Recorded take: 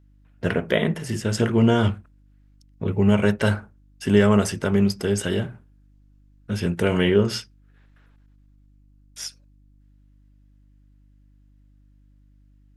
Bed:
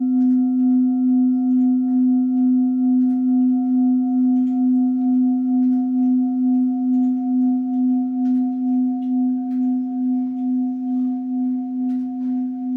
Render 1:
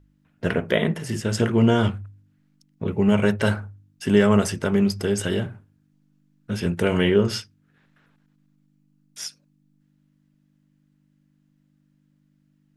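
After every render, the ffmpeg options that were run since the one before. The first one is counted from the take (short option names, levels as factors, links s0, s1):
-af "bandreject=f=50:t=h:w=4,bandreject=f=100:t=h:w=4"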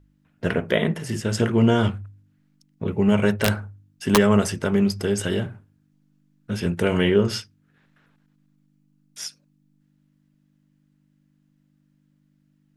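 -filter_complex "[0:a]asplit=3[s0][s1][s2];[s0]afade=t=out:st=3.32:d=0.02[s3];[s1]aeval=exprs='(mod(2.66*val(0)+1,2)-1)/2.66':c=same,afade=t=in:st=3.32:d=0.02,afade=t=out:st=4.16:d=0.02[s4];[s2]afade=t=in:st=4.16:d=0.02[s5];[s3][s4][s5]amix=inputs=3:normalize=0"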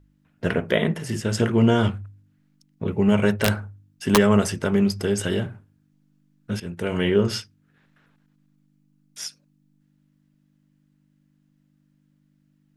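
-filter_complex "[0:a]asplit=2[s0][s1];[s0]atrim=end=6.6,asetpts=PTS-STARTPTS,afade=t=out:st=6.596:d=0.004:c=hsin:silence=0.237137[s2];[s1]atrim=start=6.6,asetpts=PTS-STARTPTS,afade=t=in:d=0.66:silence=0.237137[s3];[s2][s3]concat=n=2:v=0:a=1"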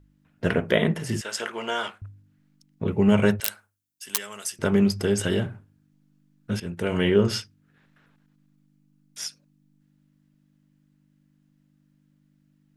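-filter_complex "[0:a]asettb=1/sr,asplit=3[s0][s1][s2];[s0]atrim=end=1.214[s3];[s1]atrim=start=1.21:end=2.02,asetpts=PTS-STARTPTS,afade=t=in:d=0.004:c=qsin,afade=t=out:st=0.806:d=0.004:c=qsin,highpass=810[s4];[s2]atrim=start=2.016[s5];[s3][s4]acrossfade=d=0.004:c1=hsin:c2=qsin[s6];[s6][s5]acrossfade=d=0.004:c1=qsin:c2=hsin,asettb=1/sr,asplit=3[s7][s8][s9];[s7]atrim=end=3.404[s10];[s8]atrim=start=3.4:end=4.59,asetpts=PTS-STARTPTS,afade=t=in:d=0.004:c=qsin,afade=t=out:st=1.186:d=0.004:c=qsin,aderivative[s11];[s9]atrim=start=4.586[s12];[s10][s11]acrossfade=d=0.004:c1=hsin:c2=qsin[s13];[s13][s12]acrossfade=d=0.004:c1=qsin:c2=hsin"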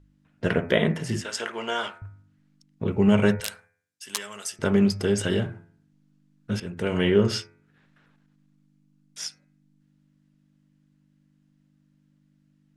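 -af "lowpass=9100,bandreject=f=84.89:t=h:w=4,bandreject=f=169.78:t=h:w=4,bandreject=f=254.67:t=h:w=4,bandreject=f=339.56:t=h:w=4,bandreject=f=424.45:t=h:w=4,bandreject=f=509.34:t=h:w=4,bandreject=f=594.23:t=h:w=4,bandreject=f=679.12:t=h:w=4,bandreject=f=764.01:t=h:w=4,bandreject=f=848.9:t=h:w=4,bandreject=f=933.79:t=h:w=4,bandreject=f=1018.68:t=h:w=4,bandreject=f=1103.57:t=h:w=4,bandreject=f=1188.46:t=h:w=4,bandreject=f=1273.35:t=h:w=4,bandreject=f=1358.24:t=h:w=4,bandreject=f=1443.13:t=h:w=4,bandreject=f=1528.02:t=h:w=4,bandreject=f=1612.91:t=h:w=4,bandreject=f=1697.8:t=h:w=4,bandreject=f=1782.69:t=h:w=4,bandreject=f=1867.58:t=h:w=4,bandreject=f=1952.47:t=h:w=4,bandreject=f=2037.36:t=h:w=4,bandreject=f=2122.25:t=h:w=4,bandreject=f=2207.14:t=h:w=4,bandreject=f=2292.03:t=h:w=4,bandreject=f=2376.92:t=h:w=4,bandreject=f=2461.81:t=h:w=4,bandreject=f=2546.7:t=h:w=4"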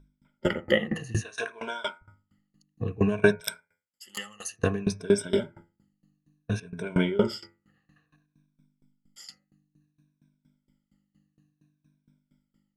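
-af "afftfilt=real='re*pow(10,19/40*sin(2*PI*(1.6*log(max(b,1)*sr/1024/100)/log(2)-(-0.58)*(pts-256)/sr)))':imag='im*pow(10,19/40*sin(2*PI*(1.6*log(max(b,1)*sr/1024/100)/log(2)-(-0.58)*(pts-256)/sr)))':win_size=1024:overlap=0.75,aeval=exprs='val(0)*pow(10,-22*if(lt(mod(4.3*n/s,1),2*abs(4.3)/1000),1-mod(4.3*n/s,1)/(2*abs(4.3)/1000),(mod(4.3*n/s,1)-2*abs(4.3)/1000)/(1-2*abs(4.3)/1000))/20)':c=same"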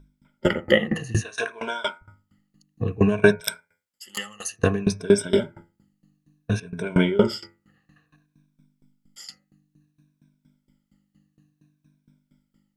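-af "volume=1.78,alimiter=limit=0.891:level=0:latency=1"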